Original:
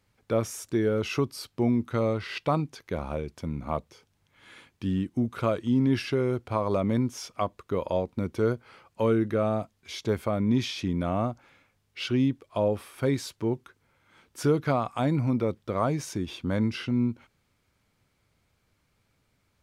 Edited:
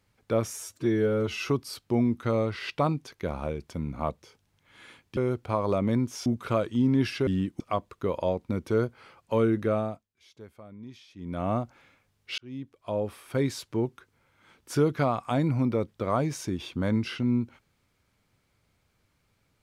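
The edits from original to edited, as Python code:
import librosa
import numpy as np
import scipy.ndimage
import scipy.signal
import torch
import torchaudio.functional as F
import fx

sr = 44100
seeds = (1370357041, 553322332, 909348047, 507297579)

y = fx.edit(x, sr, fx.stretch_span(start_s=0.53, length_s=0.64, factor=1.5),
    fx.swap(start_s=4.85, length_s=0.33, other_s=6.19, other_length_s=1.09),
    fx.fade_down_up(start_s=9.4, length_s=1.79, db=-20.0, fade_s=0.35),
    fx.fade_in_span(start_s=12.06, length_s=1.39, curve='qsin'), tone=tone)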